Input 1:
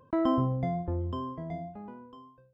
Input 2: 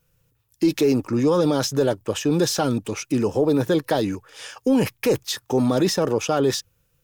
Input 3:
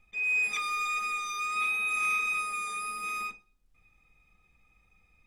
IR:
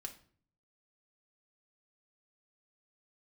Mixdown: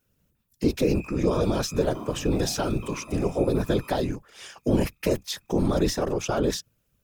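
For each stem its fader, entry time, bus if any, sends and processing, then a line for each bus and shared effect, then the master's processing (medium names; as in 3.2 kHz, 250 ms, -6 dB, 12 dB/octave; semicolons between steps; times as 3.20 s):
-3.0 dB, 1.70 s, bus A, no send, none
-5.0 dB, 0.00 s, no bus, no send, octave divider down 2 oct, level -2 dB
-5.0 dB, 0.65 s, bus A, no send, Bessel high-pass 1.8 kHz; compression 2.5:1, threshold -47 dBFS, peak gain reduction 13 dB
bus A: 0.0 dB, modulation noise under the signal 27 dB; compression 6:1, threshold -34 dBFS, peak gain reduction 9 dB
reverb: none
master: whisper effect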